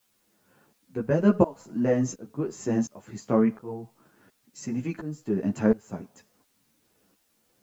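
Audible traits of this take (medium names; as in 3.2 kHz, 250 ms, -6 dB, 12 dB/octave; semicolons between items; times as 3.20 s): tremolo saw up 1.4 Hz, depth 95%; a quantiser's noise floor 12-bit, dither triangular; a shimmering, thickened sound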